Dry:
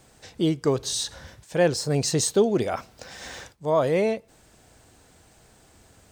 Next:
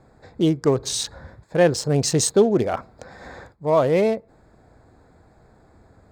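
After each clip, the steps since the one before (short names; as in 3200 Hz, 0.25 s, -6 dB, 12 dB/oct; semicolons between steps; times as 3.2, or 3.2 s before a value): Wiener smoothing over 15 samples; gain +4 dB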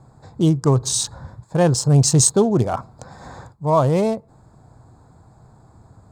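ten-band EQ 125 Hz +11 dB, 500 Hz -4 dB, 1000 Hz +8 dB, 2000 Hz -9 dB, 8000 Hz +8 dB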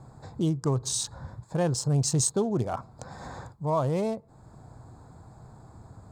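compressor 1.5:1, threshold -41 dBFS, peak gain reduction 11 dB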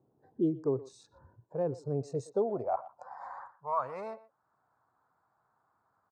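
spectral noise reduction 14 dB; speakerphone echo 0.12 s, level -17 dB; band-pass sweep 370 Hz -> 1300 Hz, 1.84–3.7; gain +3 dB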